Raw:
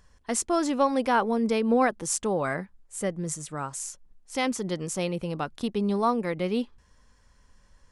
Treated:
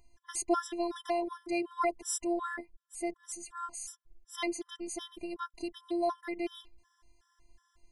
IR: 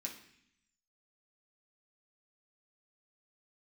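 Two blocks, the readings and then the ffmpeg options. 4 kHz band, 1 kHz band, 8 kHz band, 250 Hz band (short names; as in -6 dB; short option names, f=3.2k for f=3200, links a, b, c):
-6.5 dB, -8.0 dB, -6.5 dB, -9.0 dB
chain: -af "afftfilt=real='hypot(re,im)*cos(PI*b)':imag='0':win_size=512:overlap=0.75,afftfilt=real='re*gt(sin(2*PI*2.7*pts/sr)*(1-2*mod(floor(b*sr/1024/1000),2)),0)':imag='im*gt(sin(2*PI*2.7*pts/sr)*(1-2*mod(floor(b*sr/1024/1000),2)),0)':win_size=1024:overlap=0.75"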